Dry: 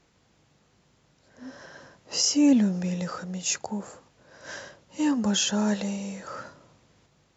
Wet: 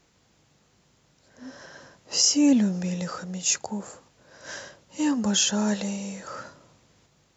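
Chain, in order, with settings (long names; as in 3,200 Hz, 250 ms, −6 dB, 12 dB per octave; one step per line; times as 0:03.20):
high-shelf EQ 5,600 Hz +7 dB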